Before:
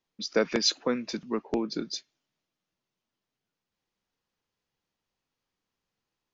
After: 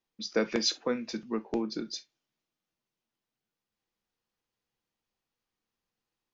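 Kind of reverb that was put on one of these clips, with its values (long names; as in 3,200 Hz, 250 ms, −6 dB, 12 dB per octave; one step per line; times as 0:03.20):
reverb whose tail is shaped and stops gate 90 ms falling, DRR 10 dB
level −3.5 dB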